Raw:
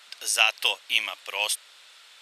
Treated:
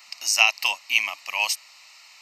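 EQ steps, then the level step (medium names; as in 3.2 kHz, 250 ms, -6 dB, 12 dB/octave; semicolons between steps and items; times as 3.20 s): treble shelf 5 kHz +5 dB; static phaser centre 2.3 kHz, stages 8; +4.5 dB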